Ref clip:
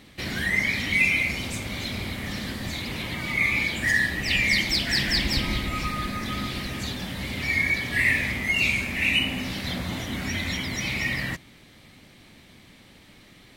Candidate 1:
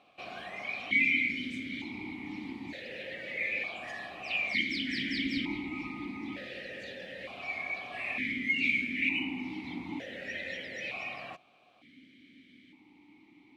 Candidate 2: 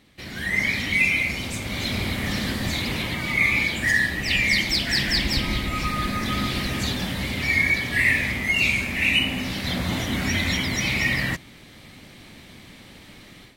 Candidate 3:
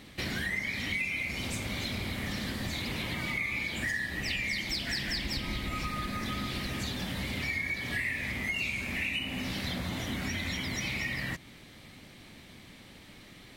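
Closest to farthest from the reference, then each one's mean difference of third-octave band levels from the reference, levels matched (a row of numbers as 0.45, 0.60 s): 2, 3, 1; 2.0, 3.5, 10.0 dB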